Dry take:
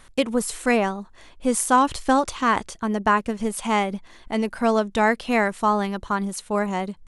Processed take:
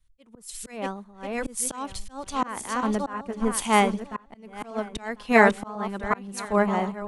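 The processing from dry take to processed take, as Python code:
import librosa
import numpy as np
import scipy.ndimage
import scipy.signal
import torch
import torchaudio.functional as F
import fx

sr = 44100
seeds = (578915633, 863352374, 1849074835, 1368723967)

y = fx.reverse_delay_fb(x, sr, ms=523, feedback_pct=42, wet_db=-6.5)
y = fx.auto_swell(y, sr, attack_ms=312.0)
y = fx.band_widen(y, sr, depth_pct=100)
y = F.gain(torch.from_numpy(y), -2.0).numpy()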